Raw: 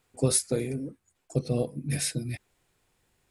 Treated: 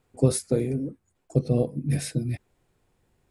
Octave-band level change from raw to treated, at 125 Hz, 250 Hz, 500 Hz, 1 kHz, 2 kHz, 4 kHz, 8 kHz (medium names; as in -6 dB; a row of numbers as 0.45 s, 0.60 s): +5.5 dB, +5.0 dB, +4.0 dB, +1.5 dB, -3.0 dB, -5.0 dB, -5.5 dB